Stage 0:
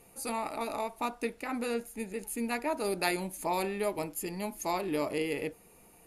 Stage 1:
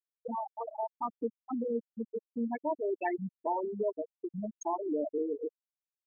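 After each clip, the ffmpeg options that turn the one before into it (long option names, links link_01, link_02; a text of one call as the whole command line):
ffmpeg -i in.wav -filter_complex "[0:a]afftfilt=real='re*gte(hypot(re,im),0.126)':imag='im*gte(hypot(re,im),0.126)':win_size=1024:overlap=0.75,asplit=2[link_01][link_02];[link_02]acompressor=threshold=-42dB:ratio=6,volume=1.5dB[link_03];[link_01][link_03]amix=inputs=2:normalize=0,volume=-1.5dB" out.wav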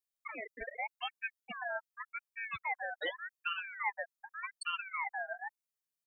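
ffmpeg -i in.wav -af "highshelf=frequency=3100:gain=10,aecho=1:1:1.6:0.84,aeval=exprs='val(0)*sin(2*PI*1600*n/s+1600*0.3/0.85*sin(2*PI*0.85*n/s))':channel_layout=same,volume=-4.5dB" out.wav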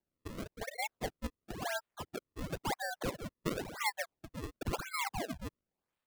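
ffmpeg -i in.wav -af "acrusher=samples=33:mix=1:aa=0.000001:lfo=1:lforange=52.8:lforate=0.96,volume=1dB" out.wav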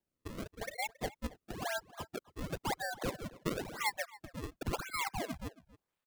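ffmpeg -i in.wav -filter_complex "[0:a]asplit=2[link_01][link_02];[link_02]adelay=274.1,volume=-19dB,highshelf=frequency=4000:gain=-6.17[link_03];[link_01][link_03]amix=inputs=2:normalize=0" out.wav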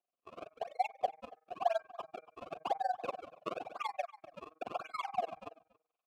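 ffmpeg -i in.wav -filter_complex "[0:a]asplit=3[link_01][link_02][link_03];[link_01]bandpass=frequency=730:width_type=q:width=8,volume=0dB[link_04];[link_02]bandpass=frequency=1090:width_type=q:width=8,volume=-6dB[link_05];[link_03]bandpass=frequency=2440:width_type=q:width=8,volume=-9dB[link_06];[link_04][link_05][link_06]amix=inputs=3:normalize=0,bandreject=frequency=158.1:width_type=h:width=4,bandreject=frequency=316.2:width_type=h:width=4,bandreject=frequency=474.3:width_type=h:width=4,bandreject=frequency=632.4:width_type=h:width=4,bandreject=frequency=790.5:width_type=h:width=4,bandreject=frequency=948.6:width_type=h:width=4,bandreject=frequency=1106.7:width_type=h:width=4,bandreject=frequency=1264.8:width_type=h:width=4,bandreject=frequency=1422.9:width_type=h:width=4,bandreject=frequency=1581:width_type=h:width=4,bandreject=frequency=1739.1:width_type=h:width=4,bandreject=frequency=1897.2:width_type=h:width=4,bandreject=frequency=2055.3:width_type=h:width=4,bandreject=frequency=2213.4:width_type=h:width=4,bandreject=frequency=2371.5:width_type=h:width=4,tremolo=f=21:d=0.974,volume=14.5dB" out.wav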